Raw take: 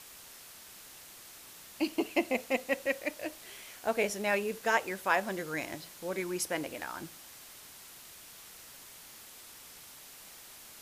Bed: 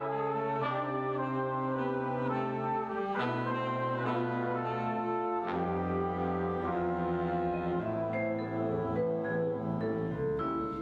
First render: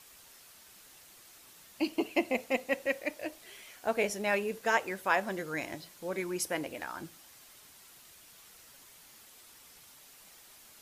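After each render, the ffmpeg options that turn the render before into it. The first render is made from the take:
ffmpeg -i in.wav -af "afftdn=noise_reduction=6:noise_floor=-52" out.wav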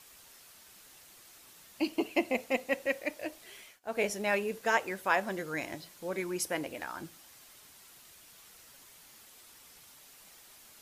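ffmpeg -i in.wav -filter_complex "[0:a]asplit=3[link_01][link_02][link_03];[link_01]atrim=end=3.8,asetpts=PTS-STARTPTS,afade=type=out:start_time=3.56:duration=0.24:curve=qsin:silence=0.0749894[link_04];[link_02]atrim=start=3.8:end=3.83,asetpts=PTS-STARTPTS,volume=-22.5dB[link_05];[link_03]atrim=start=3.83,asetpts=PTS-STARTPTS,afade=type=in:duration=0.24:curve=qsin:silence=0.0749894[link_06];[link_04][link_05][link_06]concat=n=3:v=0:a=1" out.wav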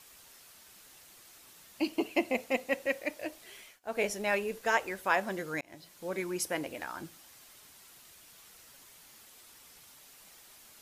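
ffmpeg -i in.wav -filter_complex "[0:a]asettb=1/sr,asplit=3[link_01][link_02][link_03];[link_01]atrim=end=3.504[link_04];[link_02]atrim=start=3.5:end=5.02,asetpts=PTS-STARTPTS,afade=type=in:duration=0.004:curve=qsin,afade=type=out:start_time=1.516:duration=0.004:curve=qsin,asubboost=boost=10.5:cutoff=63[link_05];[link_03]atrim=start=5.016[link_06];[link_04][link_05]acrossfade=duration=0.004:curve1=hsin:curve2=qsin[link_07];[link_07][link_06]acrossfade=duration=0.004:curve1=qsin:curve2=hsin,asplit=2[link_08][link_09];[link_08]atrim=end=5.61,asetpts=PTS-STARTPTS,afade=type=out:start_time=5.606:duration=0.004:curve=hsin[link_10];[link_09]atrim=start=5.61,asetpts=PTS-STARTPTS,afade=type=in:duration=0.58:curve=qsin[link_11];[link_10][link_11]concat=n=2:v=0:a=1" out.wav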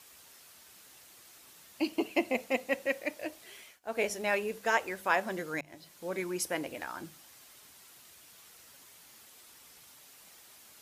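ffmpeg -i in.wav -af "highpass=51,bandreject=frequency=50:width_type=h:width=6,bandreject=frequency=100:width_type=h:width=6,bandreject=frequency=150:width_type=h:width=6,bandreject=frequency=200:width_type=h:width=6" out.wav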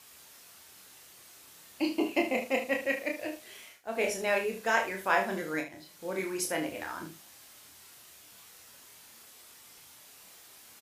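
ffmpeg -i in.wav -filter_complex "[0:a]asplit=2[link_01][link_02];[link_02]adelay=36,volume=-8.5dB[link_03];[link_01][link_03]amix=inputs=2:normalize=0,aecho=1:1:26|75:0.531|0.282" out.wav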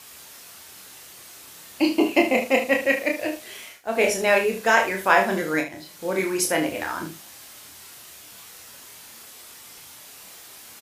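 ffmpeg -i in.wav -af "volume=9.5dB,alimiter=limit=-3dB:level=0:latency=1" out.wav

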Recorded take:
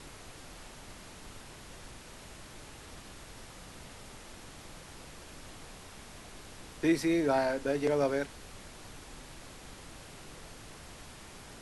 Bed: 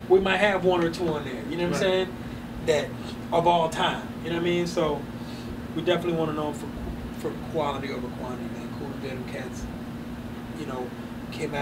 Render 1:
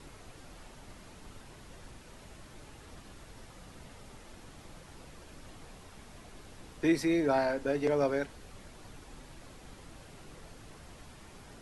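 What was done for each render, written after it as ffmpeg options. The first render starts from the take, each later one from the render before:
ffmpeg -i in.wav -af "afftdn=noise_reduction=6:noise_floor=-50" out.wav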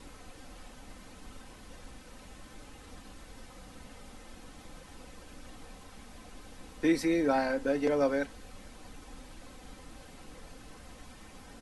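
ffmpeg -i in.wav -af "aecho=1:1:3.9:0.51" out.wav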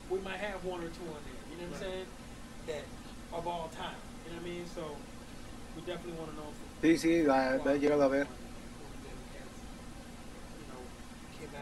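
ffmpeg -i in.wav -i bed.wav -filter_complex "[1:a]volume=-17dB[link_01];[0:a][link_01]amix=inputs=2:normalize=0" out.wav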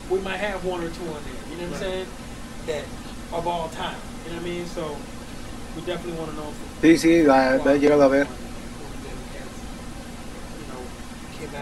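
ffmpeg -i in.wav -af "volume=11.5dB" out.wav

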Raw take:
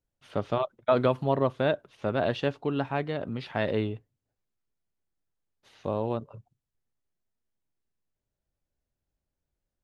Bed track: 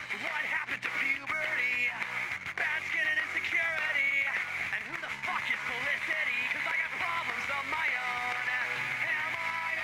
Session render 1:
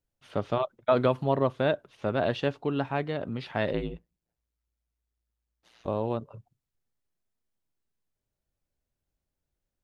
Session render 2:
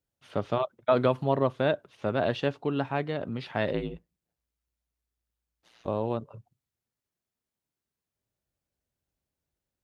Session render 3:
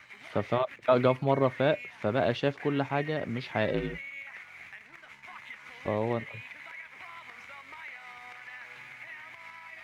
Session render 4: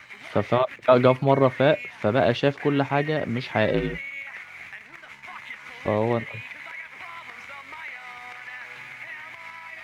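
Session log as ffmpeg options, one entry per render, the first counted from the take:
ffmpeg -i in.wav -filter_complex "[0:a]asplit=3[link_01][link_02][link_03];[link_01]afade=type=out:start_time=3.72:duration=0.02[link_04];[link_02]aeval=exprs='val(0)*sin(2*PI*58*n/s)':channel_layout=same,afade=type=in:start_time=3.72:duration=0.02,afade=type=out:start_time=5.86:duration=0.02[link_05];[link_03]afade=type=in:start_time=5.86:duration=0.02[link_06];[link_04][link_05][link_06]amix=inputs=3:normalize=0" out.wav
ffmpeg -i in.wav -af "highpass=60" out.wav
ffmpeg -i in.wav -i bed.wav -filter_complex "[1:a]volume=-13.5dB[link_01];[0:a][link_01]amix=inputs=2:normalize=0" out.wav
ffmpeg -i in.wav -af "volume=6.5dB" out.wav

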